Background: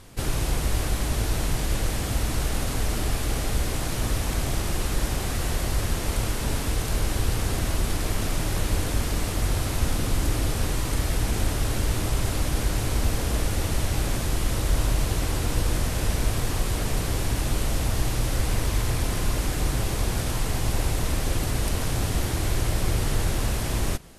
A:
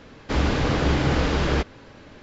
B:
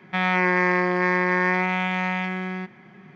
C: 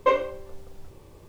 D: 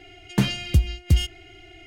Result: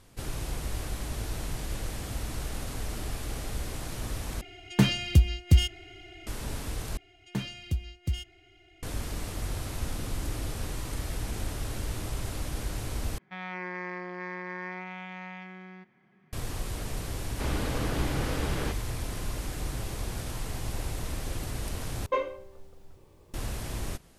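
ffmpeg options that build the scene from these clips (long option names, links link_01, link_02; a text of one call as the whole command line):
ffmpeg -i bed.wav -i cue0.wav -i cue1.wav -i cue2.wav -i cue3.wav -filter_complex "[4:a]asplit=2[link_01][link_02];[0:a]volume=-9dB,asplit=5[link_03][link_04][link_05][link_06][link_07];[link_03]atrim=end=4.414[link_08];[link_01]atrim=end=1.86,asetpts=PTS-STARTPTS,volume=-1dB[link_09];[link_04]atrim=start=6.266:end=6.974[link_10];[link_02]atrim=end=1.86,asetpts=PTS-STARTPTS,volume=-12dB[link_11];[link_05]atrim=start=8.826:end=13.184[link_12];[2:a]atrim=end=3.15,asetpts=PTS-STARTPTS,volume=-16.5dB[link_13];[link_06]atrim=start=16.326:end=22.064[link_14];[3:a]atrim=end=1.28,asetpts=PTS-STARTPTS,volume=-7.5dB[link_15];[link_07]atrim=start=23.336[link_16];[1:a]atrim=end=2.22,asetpts=PTS-STARTPTS,volume=-10dB,afade=type=in:duration=0.004:curve=hsin,afade=type=out:start_time=2.216:duration=0.004:curve=hsin,adelay=17100[link_17];[link_08][link_09]acrossfade=duration=0.004:curve1=hsin:curve2=hsin[link_18];[link_18][link_10]acrossfade=duration=0.004:curve1=hsin:curve2=hsin[link_19];[link_19][link_11]acrossfade=duration=0.004:curve1=hsin:curve2=hsin[link_20];[link_20][link_12]acrossfade=duration=0.004:curve1=hsin:curve2=hsin[link_21];[link_21][link_13]acrossfade=duration=0.004:curve1=hsin:curve2=hsin[link_22];[link_22][link_14]acrossfade=duration=0.004:curve1=hsin:curve2=hsin[link_23];[link_23][link_15]acrossfade=duration=0.004:curve1=hsin:curve2=hsin[link_24];[link_24][link_16]acrossfade=duration=0.004:curve1=hsin:curve2=hsin[link_25];[link_25][link_17]amix=inputs=2:normalize=0" out.wav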